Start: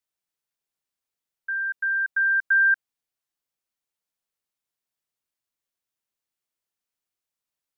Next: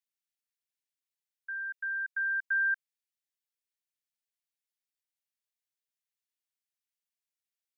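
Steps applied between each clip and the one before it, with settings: steep high-pass 1600 Hz; gain -6 dB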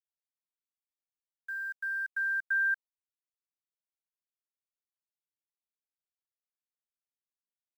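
bit-crush 10-bit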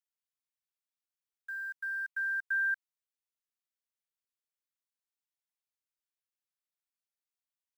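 HPF 1000 Hz 12 dB/oct; gain -1.5 dB

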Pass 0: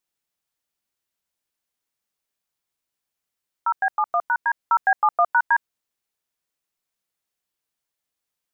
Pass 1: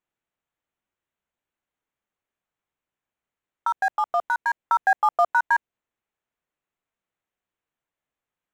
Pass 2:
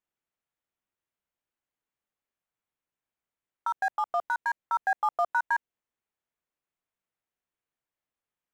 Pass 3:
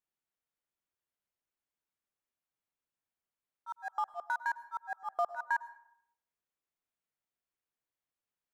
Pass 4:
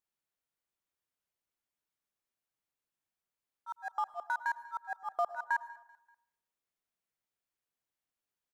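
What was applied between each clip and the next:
Wiener smoothing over 9 samples; dynamic EQ 1300 Hz, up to -5 dB, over -31 dBFS, Q 1.1; gain +2.5 dB
limiter -13 dBFS, peak gain reduction 4 dB; gain -5 dB
auto swell 0.1 s; plate-style reverb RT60 0.69 s, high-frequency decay 0.5×, pre-delay 90 ms, DRR 16 dB; gain -4.5 dB
feedback echo 0.193 s, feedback 47%, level -23 dB

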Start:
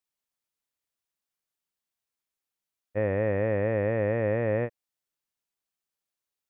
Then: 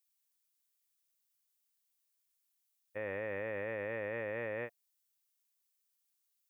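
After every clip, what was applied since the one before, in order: notch 690 Hz, Q 12; limiter -19.5 dBFS, peak gain reduction 3.5 dB; tilt +4 dB/oct; gain -6 dB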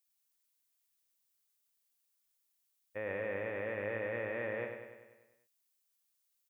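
feedback echo 98 ms, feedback 59%, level -6.5 dB

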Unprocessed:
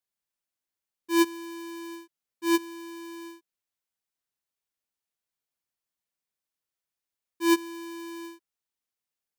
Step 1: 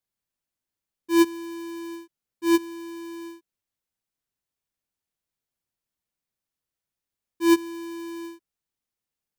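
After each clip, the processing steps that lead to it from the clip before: low shelf 310 Hz +9.5 dB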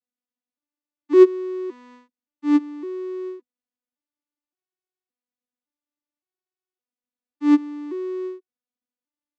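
arpeggiated vocoder minor triad, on B3, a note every 0.565 s; gain +7 dB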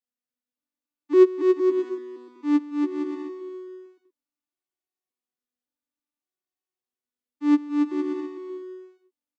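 bouncing-ball echo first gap 0.28 s, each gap 0.65×, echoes 5; gain -3.5 dB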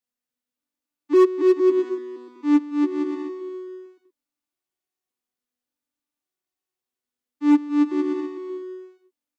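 hard clip -14 dBFS, distortion -12 dB; gain +3.5 dB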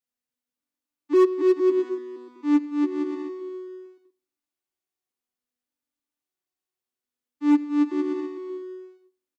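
feedback echo 89 ms, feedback 41%, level -23 dB; gain -2.5 dB

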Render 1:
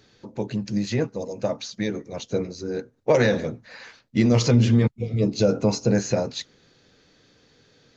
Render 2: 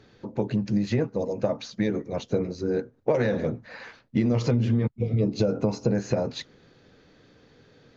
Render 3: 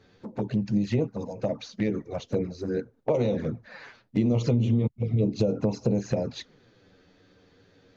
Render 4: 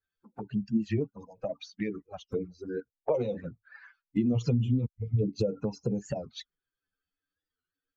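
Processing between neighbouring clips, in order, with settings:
LPF 1700 Hz 6 dB/oct; compressor 6:1, threshold -24 dBFS, peak gain reduction 11.5 dB; gain +4 dB
envelope flanger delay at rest 11.8 ms, full sweep at -20 dBFS
per-bin expansion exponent 2; record warp 45 rpm, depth 160 cents

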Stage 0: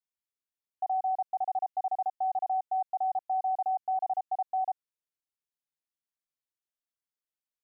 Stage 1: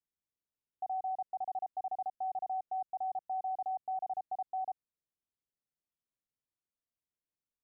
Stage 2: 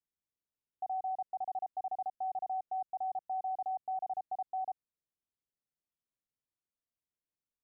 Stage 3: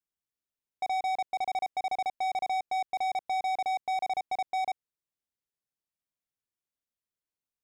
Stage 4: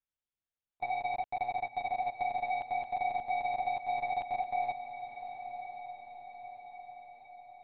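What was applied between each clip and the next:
tilt shelf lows +8 dB, about 710 Hz; limiter -29 dBFS, peak gain reduction 4 dB; gain -2.5 dB
nothing audible
sample leveller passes 3; gain +4.5 dB
monotone LPC vocoder at 8 kHz 120 Hz; diffused feedback echo 1.017 s, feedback 58%, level -10.5 dB; gain -2.5 dB

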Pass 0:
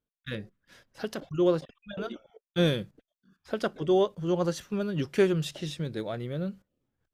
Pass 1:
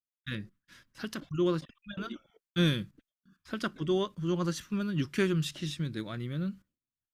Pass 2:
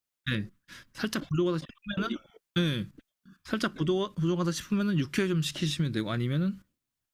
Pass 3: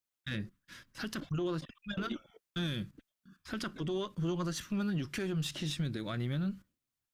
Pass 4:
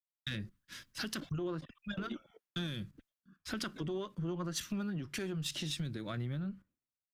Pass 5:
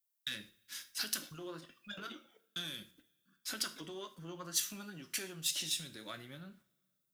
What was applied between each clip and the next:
gate with hold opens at -56 dBFS; band shelf 590 Hz -11.5 dB 1.3 oct
compressor 6:1, threshold -32 dBFS, peak gain reduction 11 dB; gain +8 dB
one diode to ground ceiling -23 dBFS; limiter -23 dBFS, peak gain reduction 8 dB; gain -3.5 dB
compressor 4:1, threshold -46 dBFS, peak gain reduction 13 dB; three-band expander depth 100%; gain +8 dB
RIAA curve recording; two-slope reverb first 0.37 s, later 2.1 s, from -28 dB, DRR 6.5 dB; gain -4 dB

